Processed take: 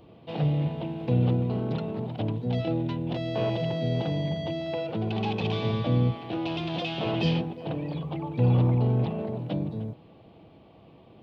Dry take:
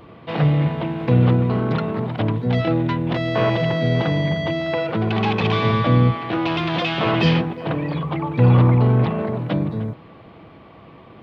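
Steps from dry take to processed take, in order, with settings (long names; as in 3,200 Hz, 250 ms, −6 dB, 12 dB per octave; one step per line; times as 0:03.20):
flat-topped bell 1,500 Hz −9.5 dB 1.3 octaves
level −8 dB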